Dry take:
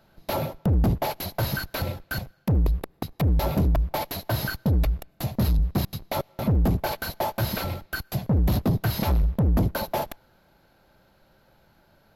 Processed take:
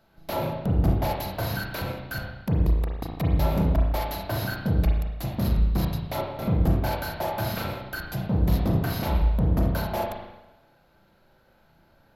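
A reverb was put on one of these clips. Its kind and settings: spring tank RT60 1 s, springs 31/37 ms, chirp 25 ms, DRR -1 dB; gain -4 dB

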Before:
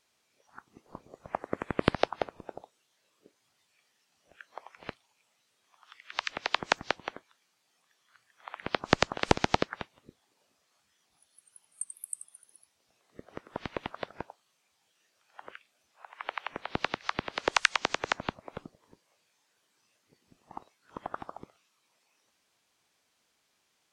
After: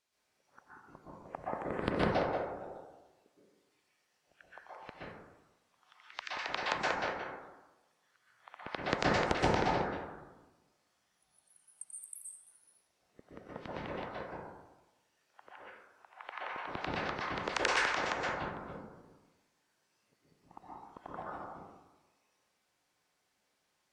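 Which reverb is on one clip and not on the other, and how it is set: plate-style reverb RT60 1.1 s, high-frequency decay 0.35×, pre-delay 0.11 s, DRR -7 dB; gain -10.5 dB

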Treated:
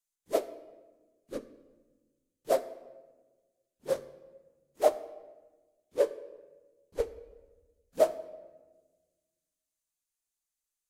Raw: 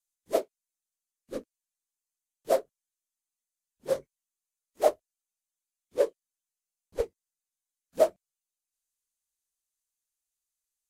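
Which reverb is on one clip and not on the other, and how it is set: shoebox room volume 900 m³, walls mixed, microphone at 0.39 m; gain -1.5 dB

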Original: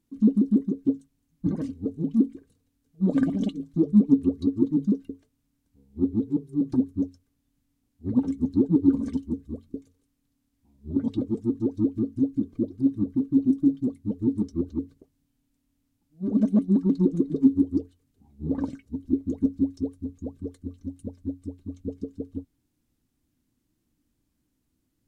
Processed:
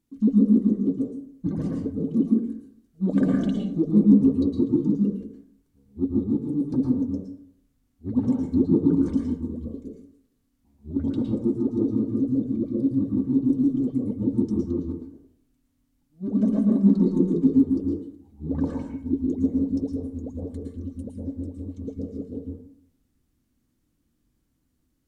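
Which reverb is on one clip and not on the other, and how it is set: plate-style reverb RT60 0.67 s, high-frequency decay 0.45×, pre-delay 0.1 s, DRR -1.5 dB; gain -1.5 dB

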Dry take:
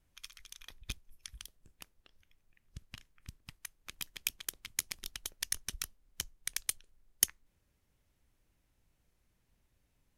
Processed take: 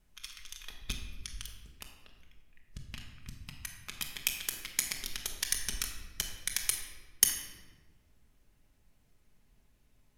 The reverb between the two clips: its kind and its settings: shoebox room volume 1000 m³, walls mixed, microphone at 1.4 m; gain +3 dB

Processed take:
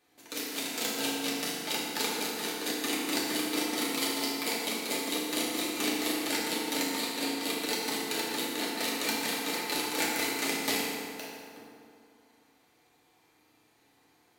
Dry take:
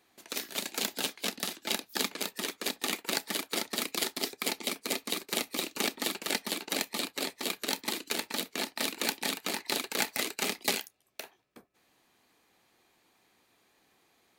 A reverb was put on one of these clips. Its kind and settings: FDN reverb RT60 2.4 s, low-frequency decay 1×, high-frequency decay 0.6×, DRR -6.5 dB; gain -5 dB

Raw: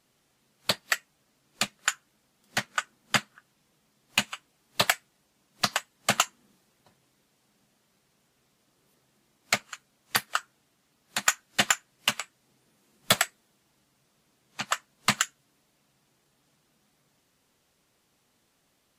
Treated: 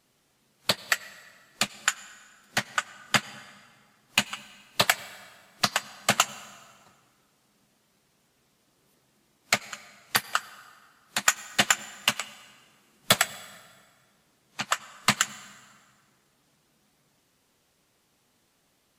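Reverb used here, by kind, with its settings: plate-style reverb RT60 1.9 s, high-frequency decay 0.8×, pre-delay 75 ms, DRR 17.5 dB; gain +1.5 dB

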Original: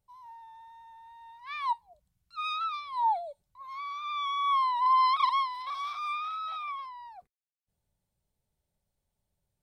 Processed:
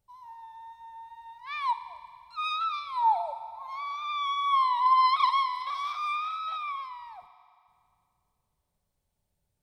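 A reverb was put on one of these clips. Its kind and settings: FDN reverb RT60 2.3 s, low-frequency decay 0.9×, high-frequency decay 0.95×, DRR 10.5 dB; gain +2 dB

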